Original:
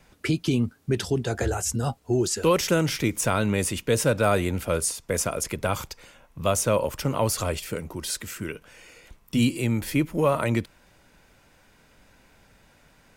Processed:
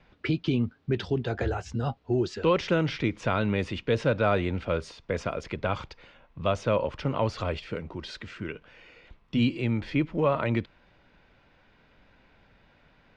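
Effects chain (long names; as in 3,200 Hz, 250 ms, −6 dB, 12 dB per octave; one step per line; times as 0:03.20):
low-pass filter 4,000 Hz 24 dB per octave
level −2.5 dB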